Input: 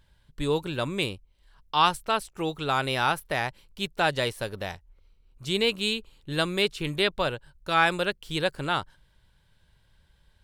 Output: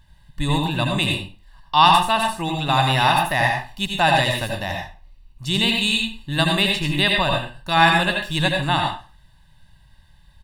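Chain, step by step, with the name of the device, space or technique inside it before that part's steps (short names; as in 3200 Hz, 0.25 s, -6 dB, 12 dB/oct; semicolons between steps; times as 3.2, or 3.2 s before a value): microphone above a desk (comb 1.1 ms, depth 78%; reverb RT60 0.35 s, pre-delay 75 ms, DRR 1 dB); gain +4 dB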